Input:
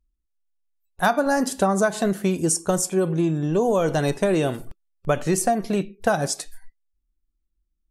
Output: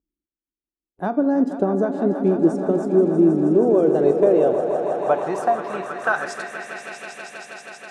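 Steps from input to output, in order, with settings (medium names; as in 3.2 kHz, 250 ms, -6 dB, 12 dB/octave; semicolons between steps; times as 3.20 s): echo with a slow build-up 160 ms, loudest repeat 5, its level -12 dB; band-pass sweep 320 Hz -> 2.3 kHz, 3.58–6.99 s; trim +8 dB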